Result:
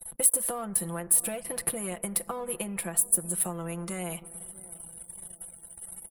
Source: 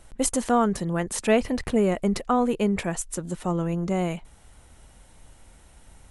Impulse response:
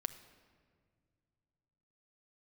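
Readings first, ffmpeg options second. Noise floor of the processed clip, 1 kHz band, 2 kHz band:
-51 dBFS, -12.0 dB, -8.0 dB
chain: -filter_complex "[0:a]acompressor=threshold=-25dB:ratio=6,aecho=1:1:5.9:0.73,asplit=2[a][b];[1:a]atrim=start_sample=2205,highshelf=f=3.6k:g=6[c];[b][c]afir=irnorm=-1:irlink=0,volume=-5dB[d];[a][d]amix=inputs=2:normalize=0,acrossover=split=91|710[e][f][g];[e]acompressor=threshold=-42dB:ratio=4[h];[f]acompressor=threshold=-33dB:ratio=4[i];[g]acompressor=threshold=-36dB:ratio=4[j];[h][i][j]amix=inputs=3:normalize=0,aeval=exprs='sgn(val(0))*max(abs(val(0))-0.00422,0)':c=same,lowshelf=f=80:g=-10.5,asplit=2[k][l];[l]adelay=641,lowpass=f=1.2k:p=1,volume=-19.5dB,asplit=2[m][n];[n]adelay=641,lowpass=f=1.2k:p=1,volume=0.48,asplit=2[o][p];[p]adelay=641,lowpass=f=1.2k:p=1,volume=0.48,asplit=2[q][r];[r]adelay=641,lowpass=f=1.2k:p=1,volume=0.48[s];[k][m][o][q][s]amix=inputs=5:normalize=0,afftdn=nr=29:nf=-57,aexciter=amount=10.9:drive=9.9:freq=9.7k,equalizer=f=300:t=o:w=0.26:g=-7,volume=-1.5dB"

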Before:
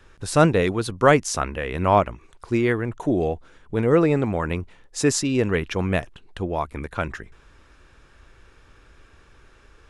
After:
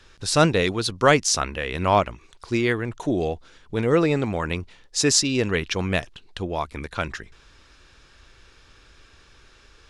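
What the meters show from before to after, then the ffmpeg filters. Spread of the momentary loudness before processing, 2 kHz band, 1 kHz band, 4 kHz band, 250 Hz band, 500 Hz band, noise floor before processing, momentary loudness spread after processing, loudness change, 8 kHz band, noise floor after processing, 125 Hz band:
13 LU, +1.5 dB, -1.0 dB, +8.0 dB, -2.0 dB, -1.5 dB, -54 dBFS, 13 LU, -0.5 dB, +5.5 dB, -54 dBFS, -2.0 dB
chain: -af "equalizer=f=4.6k:t=o:w=1.6:g=11.5,volume=-2dB"

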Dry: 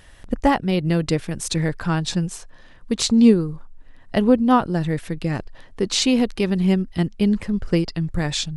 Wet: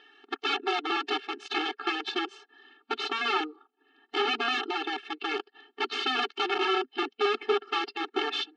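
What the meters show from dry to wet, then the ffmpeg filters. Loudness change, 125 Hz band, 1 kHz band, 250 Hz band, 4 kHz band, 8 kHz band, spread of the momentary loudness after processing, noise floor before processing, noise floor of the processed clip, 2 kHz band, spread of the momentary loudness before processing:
-9.0 dB, under -40 dB, -3.0 dB, -19.5 dB, -2.0 dB, -21.5 dB, 7 LU, -46 dBFS, -77 dBFS, +1.0 dB, 12 LU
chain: -af "acontrast=48,aeval=exprs='(mod(3.98*val(0)+1,2)-1)/3.98':c=same,highpass=310,equalizer=f=410:t=q:w=4:g=9,equalizer=f=1.4k:t=q:w=4:g=7,equalizer=f=3k:t=q:w=4:g=9,lowpass=f=4.2k:w=0.5412,lowpass=f=4.2k:w=1.3066,afftfilt=real='re*eq(mod(floor(b*sr/1024/230),2),1)':imag='im*eq(mod(floor(b*sr/1024/230),2),1)':win_size=1024:overlap=0.75,volume=-9dB"

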